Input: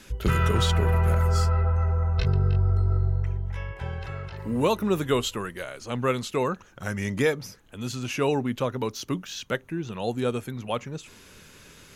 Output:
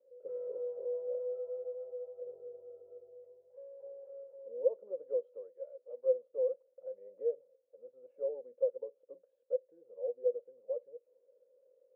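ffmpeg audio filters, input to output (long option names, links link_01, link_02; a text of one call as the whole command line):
ffmpeg -i in.wav -filter_complex "[0:a]asettb=1/sr,asplit=3[link_01][link_02][link_03];[link_01]atrim=end=5.524[link_04];[link_02]atrim=start=5.52:end=6.06,asetpts=PTS-STARTPTS,afade=type=in:duration=0.004:curve=qsin,afade=type=out:start_time=0.536:duration=0.004:curve=qsin,aemphasis=mode=production:type=riaa[link_05];[link_03]atrim=start=6.056[link_06];[link_04][link_05]acrossfade=duration=0.004:curve1=hsin:curve2=qsin[link_07];[link_07][link_06]acrossfade=duration=0.004:curve1=qsin:curve2=hsin,asuperpass=centerf=520:order=4:qfactor=7.6" out.wav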